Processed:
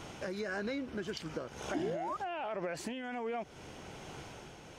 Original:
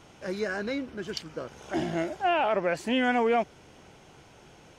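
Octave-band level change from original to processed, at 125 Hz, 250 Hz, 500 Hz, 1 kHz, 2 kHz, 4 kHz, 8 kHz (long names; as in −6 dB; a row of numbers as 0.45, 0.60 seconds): −5.5, −9.0, −9.5, −11.0, −10.0, −9.0, −2.5 decibels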